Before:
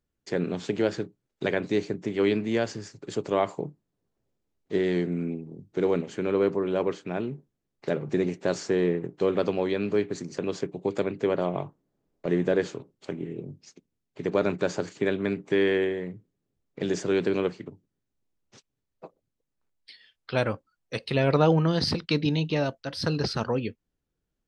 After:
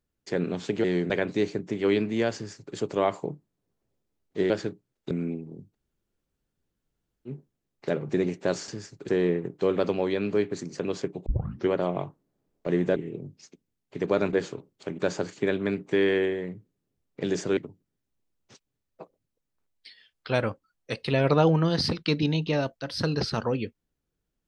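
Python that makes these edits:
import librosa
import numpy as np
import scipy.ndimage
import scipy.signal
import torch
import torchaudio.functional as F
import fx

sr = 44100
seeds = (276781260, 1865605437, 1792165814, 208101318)

y = fx.edit(x, sr, fx.swap(start_s=0.84, length_s=0.61, other_s=4.85, other_length_s=0.26),
    fx.duplicate(start_s=2.7, length_s=0.41, to_s=8.68),
    fx.room_tone_fill(start_s=5.72, length_s=1.56, crossfade_s=0.06),
    fx.tape_start(start_s=10.85, length_s=0.43),
    fx.move(start_s=12.55, length_s=0.65, to_s=14.57),
    fx.cut(start_s=17.16, length_s=0.44), tone=tone)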